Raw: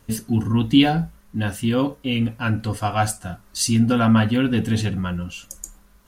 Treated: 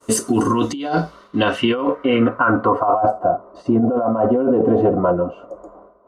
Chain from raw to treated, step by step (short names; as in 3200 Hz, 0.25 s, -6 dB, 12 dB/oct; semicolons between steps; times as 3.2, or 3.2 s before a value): tilt +2 dB/oct; notch comb 830 Hz; expander -51 dBFS; band shelf 620 Hz +14.5 dB 2.6 oct; negative-ratio compressor -19 dBFS, ratio -1; low-pass sweep 8200 Hz -> 690 Hz, 0.43–3.13; limiter -8 dBFS, peak gain reduction 6 dB; gain +1.5 dB